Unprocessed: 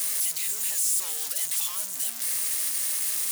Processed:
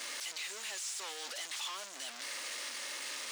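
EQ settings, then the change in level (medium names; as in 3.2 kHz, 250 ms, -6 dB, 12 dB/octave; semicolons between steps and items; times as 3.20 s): high-pass 290 Hz 24 dB/octave; distance through air 150 m; +1.0 dB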